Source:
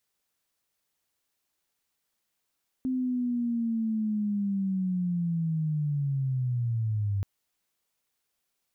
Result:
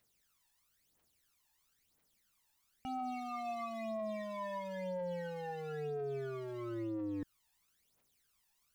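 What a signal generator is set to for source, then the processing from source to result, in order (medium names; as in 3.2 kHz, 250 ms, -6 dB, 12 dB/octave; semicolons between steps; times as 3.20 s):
sweep linear 260 Hz -> 97 Hz -25.5 dBFS -> -25 dBFS 4.38 s
wavefolder -32.5 dBFS; phaser 1 Hz, delay 1.2 ms, feedback 73%; peak limiter -33 dBFS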